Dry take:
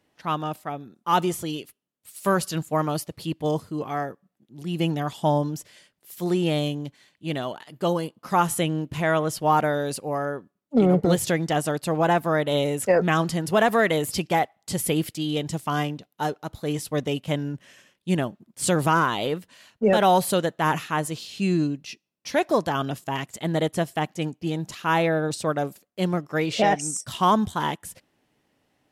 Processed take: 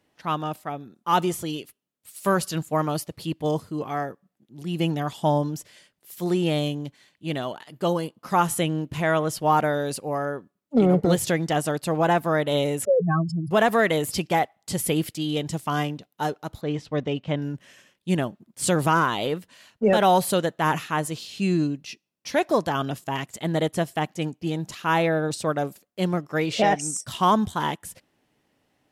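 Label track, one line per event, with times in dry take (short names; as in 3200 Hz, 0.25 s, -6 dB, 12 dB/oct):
12.850000	13.510000	spectral contrast raised exponent 3.7
16.610000	17.420000	air absorption 170 m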